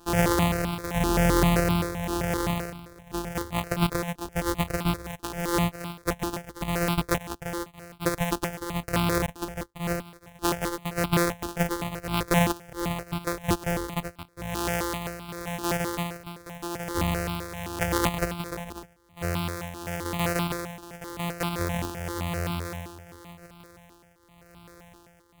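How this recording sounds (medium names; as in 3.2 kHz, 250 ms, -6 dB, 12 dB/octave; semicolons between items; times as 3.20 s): a buzz of ramps at a fixed pitch in blocks of 256 samples; tremolo triangle 0.9 Hz, depth 80%; notches that jump at a steady rate 7.7 Hz 570–1800 Hz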